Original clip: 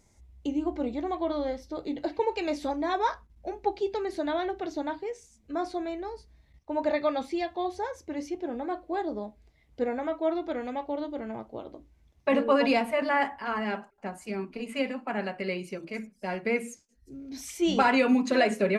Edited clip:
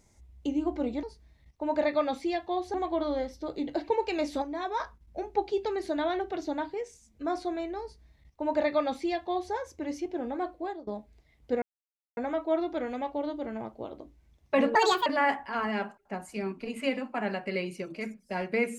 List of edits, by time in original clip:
2.71–3.09 gain -5.5 dB
6.11–7.82 copy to 1.03
8.81–9.16 fade out, to -21.5 dB
9.91 insert silence 0.55 s
12.49–12.99 speed 160%

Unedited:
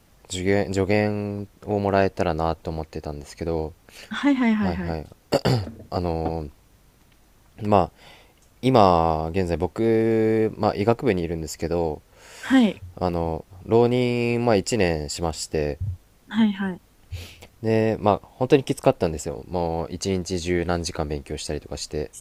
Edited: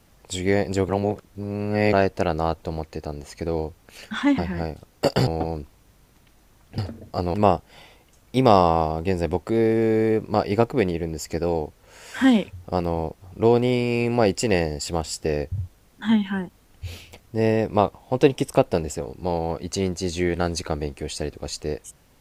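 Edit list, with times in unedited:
0.89–1.93 reverse
4.38–4.67 cut
5.56–6.12 move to 7.63

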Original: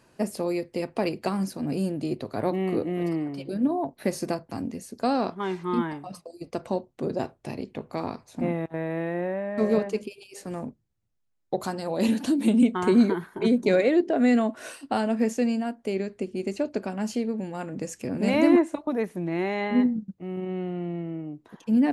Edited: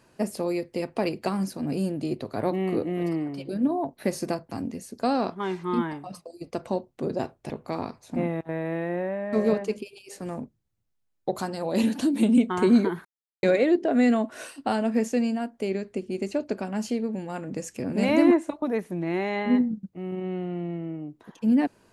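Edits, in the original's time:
7.5–7.75 cut
13.3–13.68 mute

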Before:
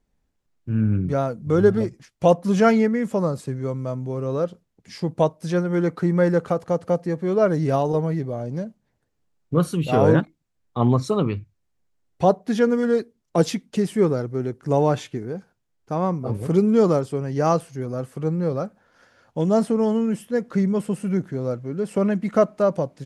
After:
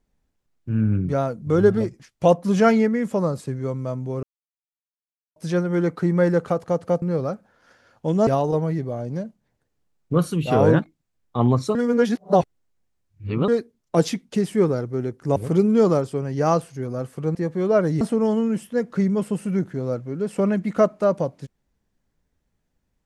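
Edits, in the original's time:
4.23–5.36 mute
7.02–7.68 swap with 18.34–19.59
11.16–12.89 reverse
14.77–16.35 cut

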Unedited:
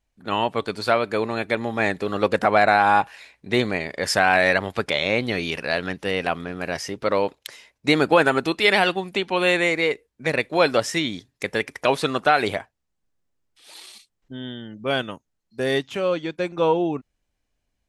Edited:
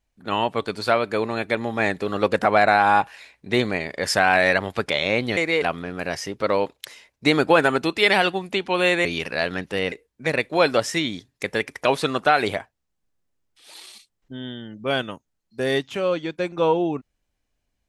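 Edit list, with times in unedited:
5.37–6.24 swap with 9.67–9.92

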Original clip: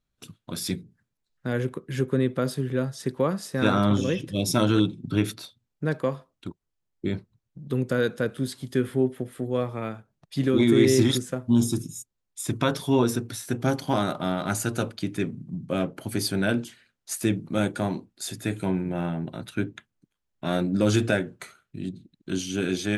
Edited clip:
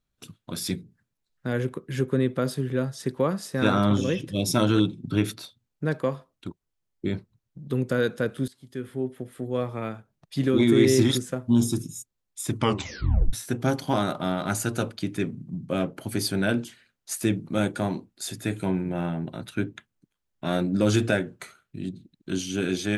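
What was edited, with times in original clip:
8.48–9.77 fade in, from -18.5 dB
12.55 tape stop 0.78 s

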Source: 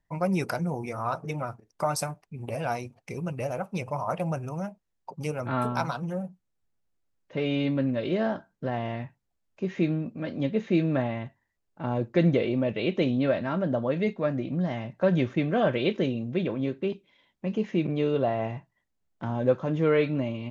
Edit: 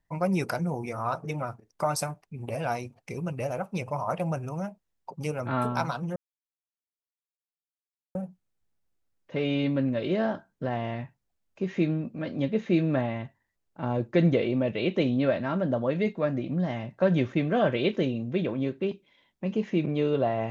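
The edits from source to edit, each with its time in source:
6.16 insert silence 1.99 s

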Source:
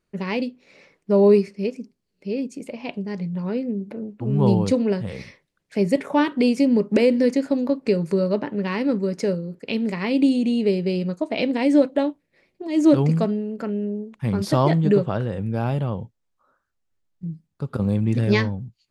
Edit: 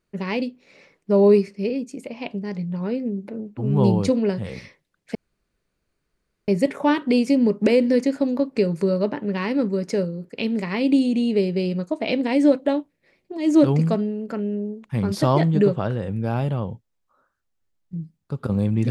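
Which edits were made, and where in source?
1.7–2.33 cut
5.78 insert room tone 1.33 s

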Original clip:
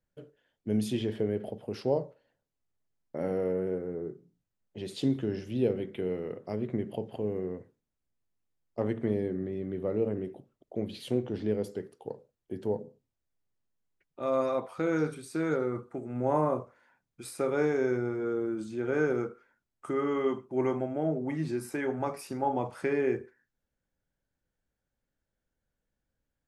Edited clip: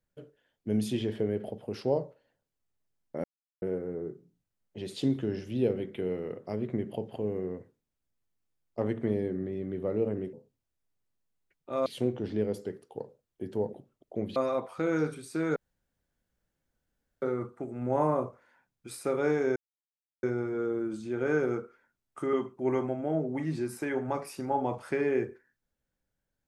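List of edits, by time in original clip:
3.24–3.62 mute
10.33–10.96 swap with 12.83–14.36
15.56 insert room tone 1.66 s
17.9 insert silence 0.67 s
20–20.25 cut

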